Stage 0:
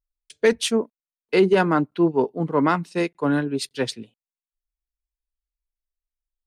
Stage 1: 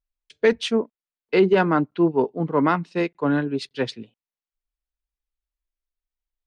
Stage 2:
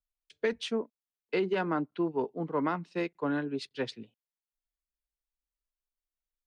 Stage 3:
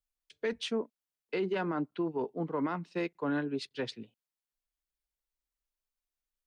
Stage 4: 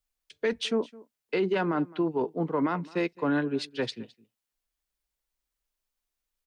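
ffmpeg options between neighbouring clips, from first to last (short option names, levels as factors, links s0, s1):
-af "lowpass=4000"
-filter_complex "[0:a]acrossover=split=200|940[s0][s1][s2];[s0]acompressor=threshold=0.0141:ratio=4[s3];[s1]acompressor=threshold=0.1:ratio=4[s4];[s2]acompressor=threshold=0.0501:ratio=4[s5];[s3][s4][s5]amix=inputs=3:normalize=0,volume=0.422"
-af "alimiter=limit=0.0631:level=0:latency=1:release=32"
-af "aecho=1:1:212:0.0794,volume=1.88"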